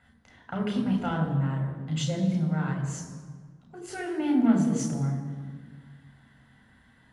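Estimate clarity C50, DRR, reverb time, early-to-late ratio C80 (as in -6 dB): 5.5 dB, 0.5 dB, 1.6 s, 7.0 dB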